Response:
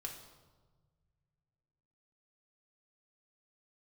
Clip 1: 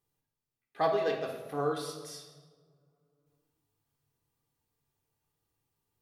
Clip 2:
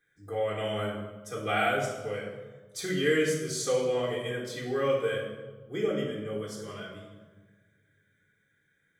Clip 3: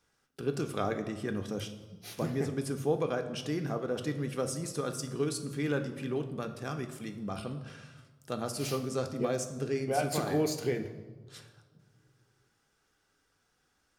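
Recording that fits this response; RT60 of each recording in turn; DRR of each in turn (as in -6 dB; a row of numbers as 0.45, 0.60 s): 1; 1.4, 1.4, 1.4 s; -0.5, -7.5, 5.0 dB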